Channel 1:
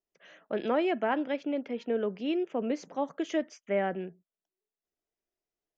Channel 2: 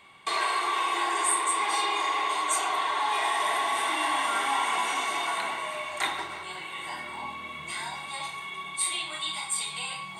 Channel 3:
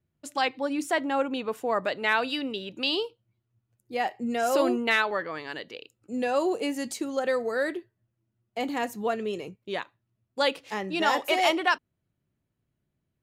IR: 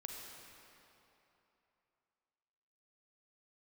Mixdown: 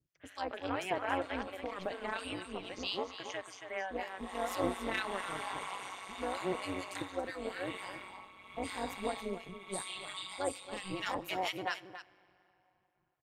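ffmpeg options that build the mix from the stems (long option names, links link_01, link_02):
-filter_complex "[0:a]highpass=1000,volume=1dB,asplit=2[link_01][link_02];[link_02]volume=-7.5dB[link_03];[1:a]tremolo=f=0.88:d=0.7,acompressor=threshold=-33dB:ratio=3,adelay=950,volume=-3.5dB,afade=type=in:start_time=4.2:duration=0.33:silence=0.223872,asplit=2[link_04][link_05];[link_05]volume=-18.5dB[link_06];[2:a]equalizer=frequency=150:width=1.4:gain=8,acrossover=split=1400[link_07][link_08];[link_07]aeval=exprs='val(0)*(1-1/2+1/2*cos(2*PI*4.3*n/s))':channel_layout=same[link_09];[link_08]aeval=exprs='val(0)*(1-1/2-1/2*cos(2*PI*4.3*n/s))':channel_layout=same[link_10];[link_09][link_10]amix=inputs=2:normalize=0,volume=-5.5dB,asplit=3[link_11][link_12][link_13];[link_12]volume=-14dB[link_14];[link_13]volume=-11dB[link_15];[3:a]atrim=start_sample=2205[link_16];[link_14][link_16]afir=irnorm=-1:irlink=0[link_17];[link_03][link_06][link_15]amix=inputs=3:normalize=0,aecho=0:1:277:1[link_18];[link_01][link_04][link_11][link_17][link_18]amix=inputs=5:normalize=0,tremolo=f=190:d=0.824"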